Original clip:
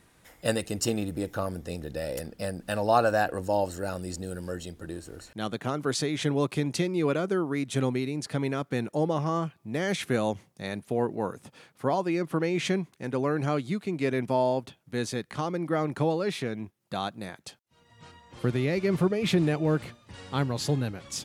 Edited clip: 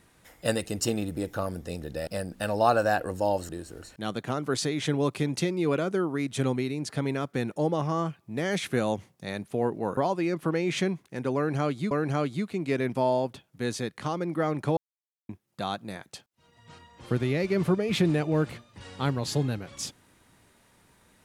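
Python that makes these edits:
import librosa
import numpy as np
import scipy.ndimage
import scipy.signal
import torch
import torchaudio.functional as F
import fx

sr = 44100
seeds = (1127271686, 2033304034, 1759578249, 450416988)

y = fx.edit(x, sr, fx.cut(start_s=2.07, length_s=0.28),
    fx.cut(start_s=3.77, length_s=1.09),
    fx.cut(start_s=11.34, length_s=0.51),
    fx.repeat(start_s=13.24, length_s=0.55, count=2),
    fx.silence(start_s=16.1, length_s=0.52), tone=tone)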